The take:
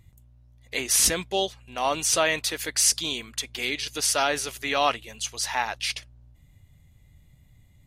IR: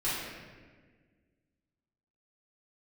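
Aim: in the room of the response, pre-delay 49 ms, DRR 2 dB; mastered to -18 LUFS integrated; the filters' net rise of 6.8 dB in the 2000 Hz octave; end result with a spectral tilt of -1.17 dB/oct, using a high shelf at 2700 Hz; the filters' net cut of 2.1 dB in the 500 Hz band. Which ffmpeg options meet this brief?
-filter_complex "[0:a]equalizer=f=500:t=o:g=-3.5,equalizer=f=2k:t=o:g=6.5,highshelf=f=2.7k:g=4.5,asplit=2[a][b];[1:a]atrim=start_sample=2205,adelay=49[c];[b][c]afir=irnorm=-1:irlink=0,volume=-10.5dB[d];[a][d]amix=inputs=2:normalize=0,volume=1dB"

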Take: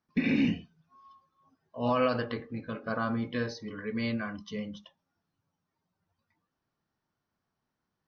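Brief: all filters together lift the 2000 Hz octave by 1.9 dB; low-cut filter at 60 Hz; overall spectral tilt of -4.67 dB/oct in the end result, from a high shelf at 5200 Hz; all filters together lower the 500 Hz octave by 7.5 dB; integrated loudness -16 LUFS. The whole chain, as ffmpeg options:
-af "highpass=60,equalizer=f=500:t=o:g=-9,equalizer=f=2k:t=o:g=4.5,highshelf=f=5.2k:g=-9,volume=17.5dB"

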